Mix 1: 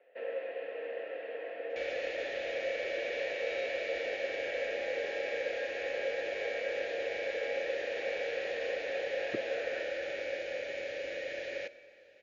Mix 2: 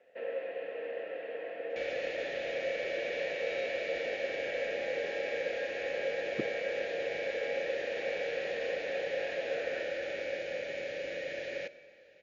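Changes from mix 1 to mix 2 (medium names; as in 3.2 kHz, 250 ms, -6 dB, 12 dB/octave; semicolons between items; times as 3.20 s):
speech: entry -2.95 s; master: add peaking EQ 170 Hz +9 dB 1 oct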